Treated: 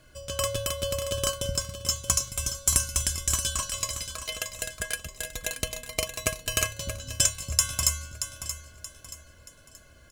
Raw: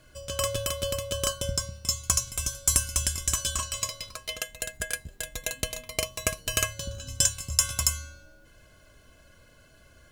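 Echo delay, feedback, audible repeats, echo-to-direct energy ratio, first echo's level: 628 ms, 37%, 3, −9.5 dB, −10.0 dB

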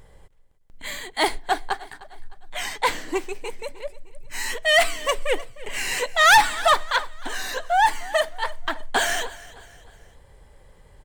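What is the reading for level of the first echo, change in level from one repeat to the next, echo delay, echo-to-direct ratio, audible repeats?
−19.0 dB, −7.0 dB, 306 ms, −18.0 dB, 3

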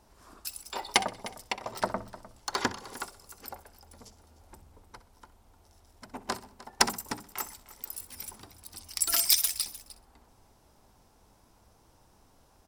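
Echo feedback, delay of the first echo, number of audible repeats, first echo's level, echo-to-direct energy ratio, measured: repeats not evenly spaced, 63 ms, 5, −16.0 dB, −13.5 dB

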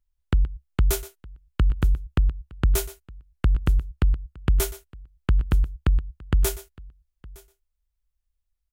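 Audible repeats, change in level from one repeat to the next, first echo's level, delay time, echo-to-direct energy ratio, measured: 2, repeats not evenly spaced, −16.5 dB, 122 ms, −15.5 dB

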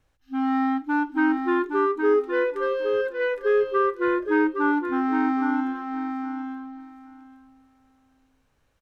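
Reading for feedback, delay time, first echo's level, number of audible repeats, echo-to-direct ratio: 16%, 816 ms, −6.0 dB, 2, −6.0 dB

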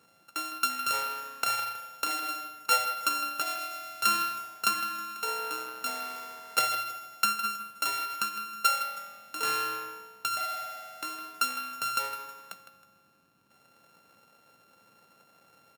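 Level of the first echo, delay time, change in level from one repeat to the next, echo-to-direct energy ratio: −12.0 dB, 159 ms, −8.5 dB, −11.5 dB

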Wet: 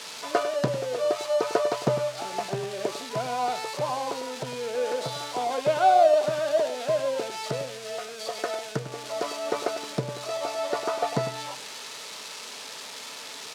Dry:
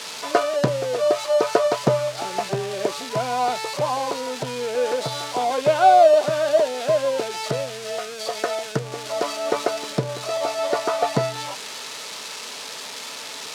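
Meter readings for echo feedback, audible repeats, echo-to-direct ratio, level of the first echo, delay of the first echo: repeats not evenly spaced, 1, −12.0 dB, −12.0 dB, 100 ms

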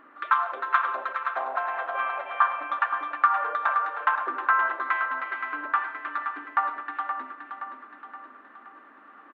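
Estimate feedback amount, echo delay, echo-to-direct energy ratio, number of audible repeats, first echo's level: 52%, 522 ms, −6.5 dB, 5, −8.0 dB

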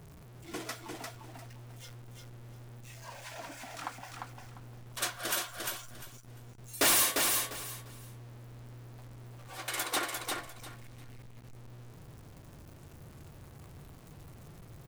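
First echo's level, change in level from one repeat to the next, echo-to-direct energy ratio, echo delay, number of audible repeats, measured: −4.0 dB, −13.0 dB, −4.0 dB, 349 ms, 3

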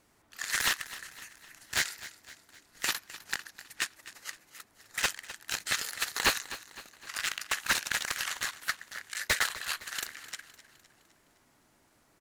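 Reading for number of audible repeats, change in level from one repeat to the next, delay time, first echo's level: 4, −6.0 dB, 256 ms, −16.0 dB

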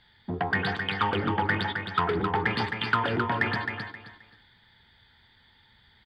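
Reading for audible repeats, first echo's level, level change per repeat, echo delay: 3, −6.0 dB, −11.5 dB, 264 ms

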